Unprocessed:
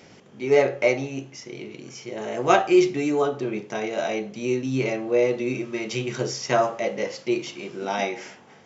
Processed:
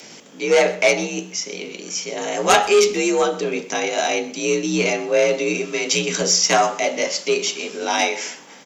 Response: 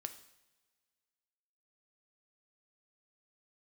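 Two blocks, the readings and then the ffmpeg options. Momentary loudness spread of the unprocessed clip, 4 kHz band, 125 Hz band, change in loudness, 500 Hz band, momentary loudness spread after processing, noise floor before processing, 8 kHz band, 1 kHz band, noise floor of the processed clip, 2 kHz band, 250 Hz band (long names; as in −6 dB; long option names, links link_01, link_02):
17 LU, +13.0 dB, −1.0 dB, +5.0 dB, +3.5 dB, 11 LU, −50 dBFS, can't be measured, +5.5 dB, −42 dBFS, +8.0 dB, 0.0 dB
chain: -af "afreqshift=51,asoftclip=type=tanh:threshold=-12.5dB,crystalizer=i=4.5:c=0,aecho=1:1:126:0.112,volume=4dB"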